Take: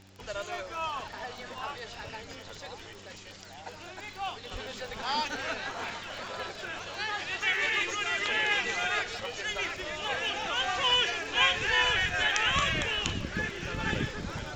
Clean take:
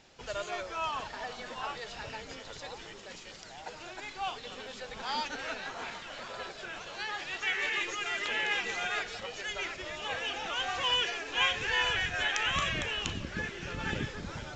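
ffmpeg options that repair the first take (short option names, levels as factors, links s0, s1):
-filter_complex "[0:a]adeclick=t=4,bandreject=f=96.2:t=h:w=4,bandreject=f=192.4:t=h:w=4,bandreject=f=288.6:t=h:w=4,bandreject=f=384.8:t=h:w=4,asplit=3[s0][s1][s2];[s0]afade=t=out:st=4.52:d=0.02[s3];[s1]highpass=f=140:w=0.5412,highpass=f=140:w=1.3066,afade=t=in:st=4.52:d=0.02,afade=t=out:st=4.64:d=0.02[s4];[s2]afade=t=in:st=4.64:d=0.02[s5];[s3][s4][s5]amix=inputs=3:normalize=0,asetnsamples=n=441:p=0,asendcmd='4.51 volume volume -3.5dB',volume=1"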